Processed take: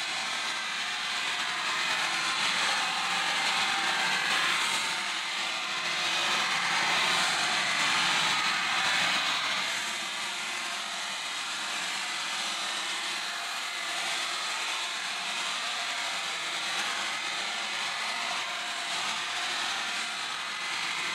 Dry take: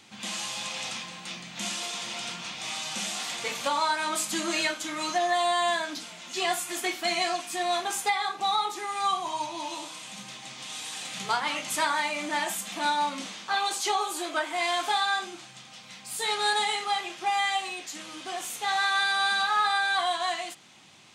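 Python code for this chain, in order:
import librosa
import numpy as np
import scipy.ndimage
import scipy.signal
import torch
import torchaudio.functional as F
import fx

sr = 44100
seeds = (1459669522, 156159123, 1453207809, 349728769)

y = fx.bin_compress(x, sr, power=0.4)
y = fx.high_shelf(y, sr, hz=4900.0, db=-10.5)
y = fx.echo_wet_bandpass(y, sr, ms=235, feedback_pct=60, hz=1200.0, wet_db=-4.5)
y = fx.paulstretch(y, sr, seeds[0], factor=15.0, window_s=0.05, from_s=0.94)
y = fx.tone_stack(y, sr, knobs='5-5-5')
y = fx.over_compress(y, sr, threshold_db=-38.0, ratio=-0.5)
y = F.gain(torch.from_numpy(y), 8.5).numpy()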